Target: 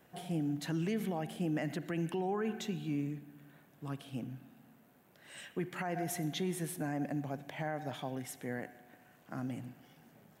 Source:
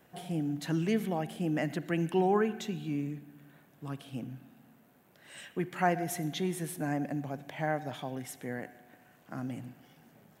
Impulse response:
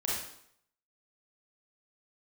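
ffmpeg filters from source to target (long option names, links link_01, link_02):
-af "alimiter=level_in=1.5dB:limit=-24dB:level=0:latency=1:release=49,volume=-1.5dB,volume=-1.5dB"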